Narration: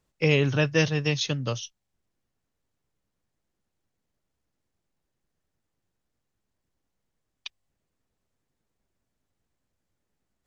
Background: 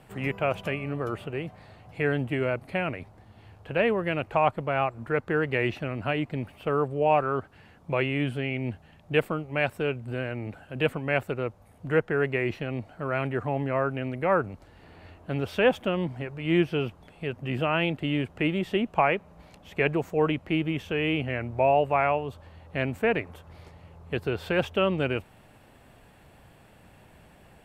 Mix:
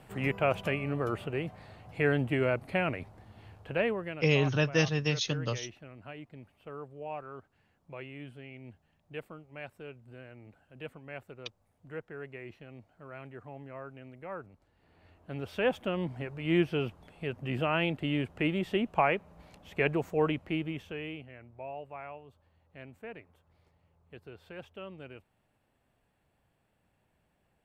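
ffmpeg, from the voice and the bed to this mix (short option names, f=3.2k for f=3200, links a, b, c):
-filter_complex "[0:a]adelay=4000,volume=-4dB[a];[1:a]volume=13dB,afade=t=out:st=3.46:d=0.81:silence=0.149624,afade=t=in:st=14.76:d=1.49:silence=0.199526,afade=t=out:st=20.21:d=1.07:silence=0.149624[b];[a][b]amix=inputs=2:normalize=0"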